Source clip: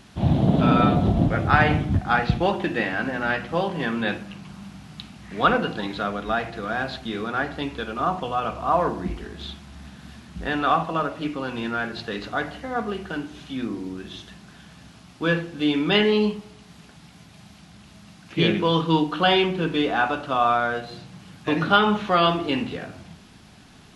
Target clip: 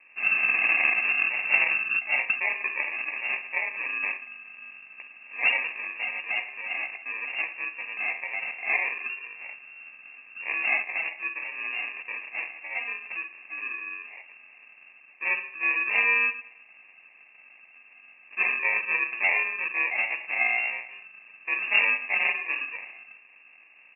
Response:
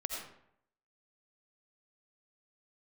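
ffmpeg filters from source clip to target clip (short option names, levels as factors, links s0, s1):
-af "aecho=1:1:14|65:0.422|0.141,acrusher=samples=32:mix=1:aa=0.000001,lowpass=f=2400:t=q:w=0.5098,lowpass=f=2400:t=q:w=0.6013,lowpass=f=2400:t=q:w=0.9,lowpass=f=2400:t=q:w=2.563,afreqshift=-2800,volume=0.501"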